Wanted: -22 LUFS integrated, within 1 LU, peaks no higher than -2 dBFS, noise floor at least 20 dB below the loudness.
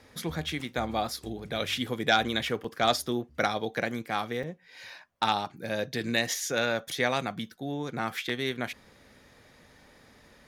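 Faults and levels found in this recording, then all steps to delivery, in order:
dropouts 3; longest dropout 4.3 ms; loudness -30.0 LUFS; peak level -12.0 dBFS; loudness target -22.0 LUFS
-> interpolate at 2.64/4.43/8.29 s, 4.3 ms; trim +8 dB

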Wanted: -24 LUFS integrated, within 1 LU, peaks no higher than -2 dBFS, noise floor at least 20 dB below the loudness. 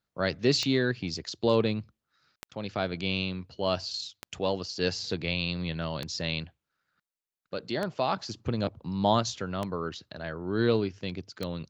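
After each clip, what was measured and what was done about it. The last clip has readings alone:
clicks found 7; loudness -30.5 LUFS; peak level -10.5 dBFS; loudness target -24.0 LUFS
-> de-click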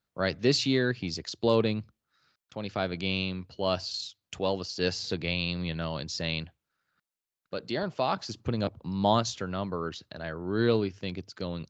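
clicks found 0; loudness -30.5 LUFS; peak level -10.5 dBFS; loudness target -24.0 LUFS
-> trim +6.5 dB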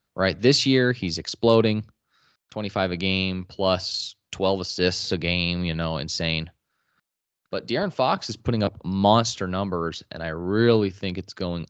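loudness -24.0 LUFS; peak level -4.0 dBFS; noise floor -82 dBFS

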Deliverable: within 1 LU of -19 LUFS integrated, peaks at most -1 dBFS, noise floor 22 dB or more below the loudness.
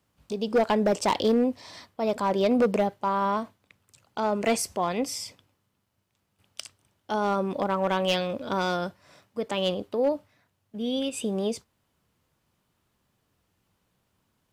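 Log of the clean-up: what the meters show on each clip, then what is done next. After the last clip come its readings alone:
clipped samples 0.7%; clipping level -16.5 dBFS; loudness -27.0 LUFS; peak level -16.5 dBFS; loudness target -19.0 LUFS
-> clip repair -16.5 dBFS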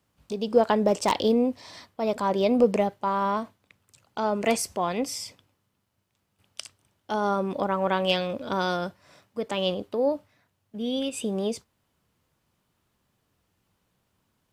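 clipped samples 0.0%; loudness -26.5 LUFS; peak level -7.5 dBFS; loudness target -19.0 LUFS
-> trim +7.5 dB; peak limiter -1 dBFS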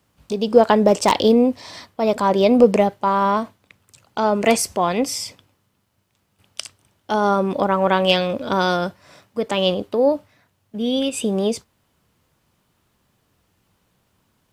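loudness -19.0 LUFS; peak level -1.0 dBFS; noise floor -68 dBFS

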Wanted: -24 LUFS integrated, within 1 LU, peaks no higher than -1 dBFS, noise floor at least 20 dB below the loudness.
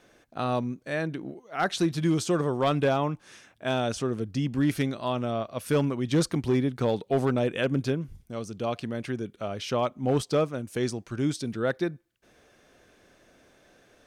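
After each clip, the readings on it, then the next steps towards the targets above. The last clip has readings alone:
clipped samples 0.5%; clipping level -17.0 dBFS; loudness -28.5 LUFS; peak level -17.0 dBFS; loudness target -24.0 LUFS
-> clip repair -17 dBFS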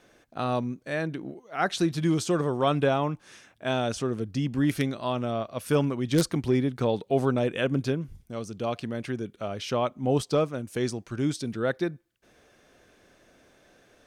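clipped samples 0.0%; loudness -28.0 LUFS; peak level -8.0 dBFS; loudness target -24.0 LUFS
-> trim +4 dB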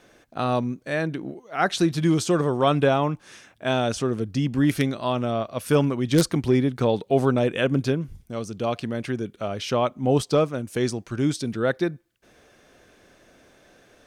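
loudness -24.0 LUFS; peak level -4.0 dBFS; noise floor -57 dBFS

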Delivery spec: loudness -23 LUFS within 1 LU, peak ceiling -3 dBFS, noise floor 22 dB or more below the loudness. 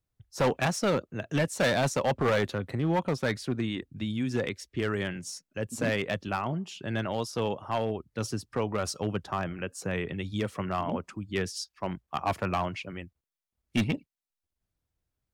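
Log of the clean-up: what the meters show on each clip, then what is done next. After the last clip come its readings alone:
clipped samples 1.2%; clipping level -20.5 dBFS; loudness -31.0 LUFS; peak level -20.5 dBFS; loudness target -23.0 LUFS
-> clip repair -20.5 dBFS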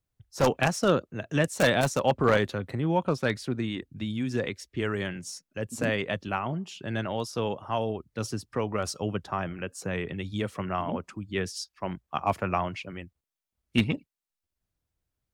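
clipped samples 0.0%; loudness -29.5 LUFS; peak level -11.5 dBFS; loudness target -23.0 LUFS
-> trim +6.5 dB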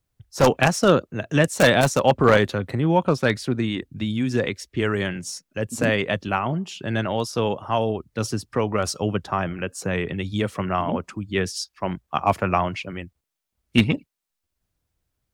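loudness -23.0 LUFS; peak level -5.0 dBFS; noise floor -80 dBFS

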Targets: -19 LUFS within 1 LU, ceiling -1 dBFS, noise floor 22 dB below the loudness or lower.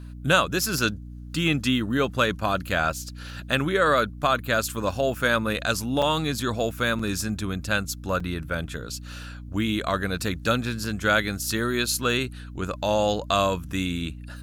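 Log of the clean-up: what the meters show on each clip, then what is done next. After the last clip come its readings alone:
dropouts 3; longest dropout 4.1 ms; hum 60 Hz; highest harmonic 300 Hz; hum level -36 dBFS; loudness -25.0 LUFS; peak level -5.5 dBFS; loudness target -19.0 LUFS
-> interpolate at 6.02/6.99/8.20 s, 4.1 ms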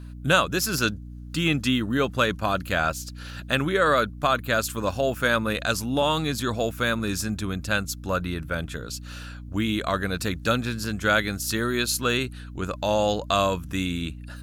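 dropouts 0; hum 60 Hz; highest harmonic 300 Hz; hum level -36 dBFS
-> de-hum 60 Hz, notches 5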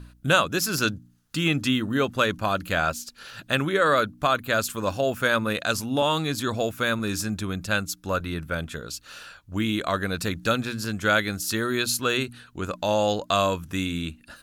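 hum not found; loudness -25.0 LUFS; peak level -5.0 dBFS; loudness target -19.0 LUFS
-> trim +6 dB; peak limiter -1 dBFS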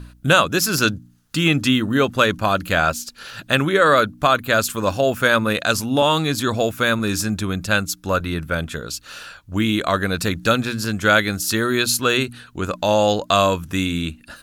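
loudness -19.0 LUFS; peak level -1.0 dBFS; noise floor -50 dBFS

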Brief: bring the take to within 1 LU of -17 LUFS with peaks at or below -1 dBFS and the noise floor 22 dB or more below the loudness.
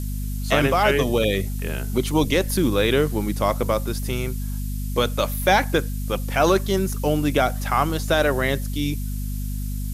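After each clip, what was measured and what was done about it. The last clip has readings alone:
hum 50 Hz; highest harmonic 250 Hz; hum level -25 dBFS; noise floor -27 dBFS; noise floor target -45 dBFS; loudness -22.5 LUFS; peak level -4.0 dBFS; loudness target -17.0 LUFS
-> hum notches 50/100/150/200/250 Hz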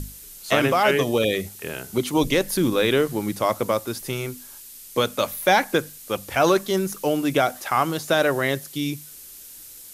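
hum not found; noise floor -43 dBFS; noise floor target -45 dBFS
-> noise print and reduce 6 dB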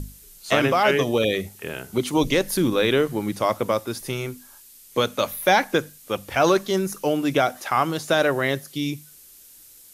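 noise floor -49 dBFS; loudness -22.5 LUFS; peak level -4.5 dBFS; loudness target -17.0 LUFS
-> trim +5.5 dB; peak limiter -1 dBFS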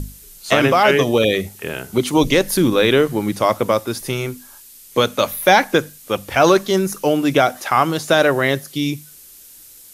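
loudness -17.0 LUFS; peak level -1.0 dBFS; noise floor -43 dBFS

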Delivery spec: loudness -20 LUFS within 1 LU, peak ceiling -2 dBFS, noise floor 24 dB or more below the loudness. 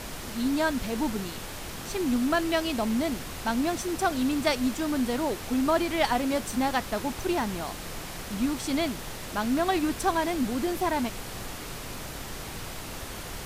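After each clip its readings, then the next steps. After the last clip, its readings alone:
noise floor -39 dBFS; noise floor target -53 dBFS; loudness -29.0 LUFS; peak level -12.0 dBFS; loudness target -20.0 LUFS
-> noise print and reduce 14 dB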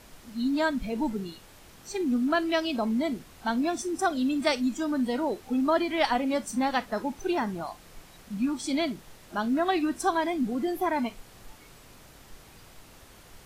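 noise floor -52 dBFS; noise floor target -53 dBFS
-> noise print and reduce 6 dB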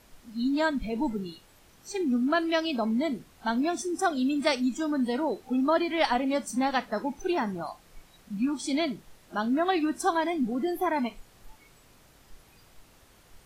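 noise floor -58 dBFS; loudness -28.5 LUFS; peak level -12.0 dBFS; loudness target -20.0 LUFS
-> trim +8.5 dB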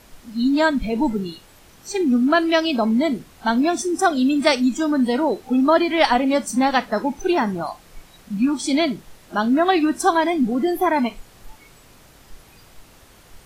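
loudness -20.0 LUFS; peak level -3.5 dBFS; noise floor -50 dBFS

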